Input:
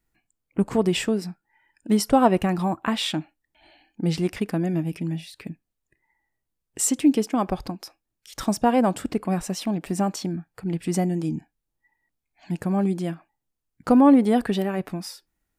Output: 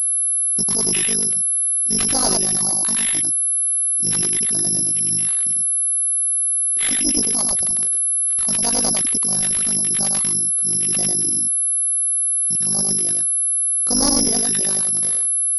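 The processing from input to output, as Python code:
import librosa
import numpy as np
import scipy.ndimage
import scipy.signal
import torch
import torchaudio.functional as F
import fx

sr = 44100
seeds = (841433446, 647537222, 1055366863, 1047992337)

p1 = fx.dereverb_blind(x, sr, rt60_s=0.83)
p2 = fx.transient(p1, sr, attack_db=-4, sustain_db=6)
p3 = p2 + fx.echo_single(p2, sr, ms=98, db=-3.0, dry=0)
p4 = (np.kron(p3[::8], np.eye(8)[0]) * 8)[:len(p3)]
p5 = fx.pwm(p4, sr, carrier_hz=11000.0)
y = p5 * 10.0 ** (-8.5 / 20.0)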